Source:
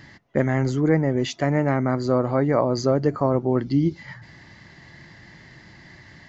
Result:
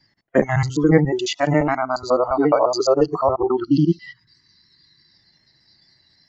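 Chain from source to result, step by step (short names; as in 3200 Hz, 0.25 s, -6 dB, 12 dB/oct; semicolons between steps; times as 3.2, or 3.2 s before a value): local time reversal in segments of 70 ms; spectral delete 3.56–5.12, 440–890 Hz; spectral noise reduction 25 dB; gain +6.5 dB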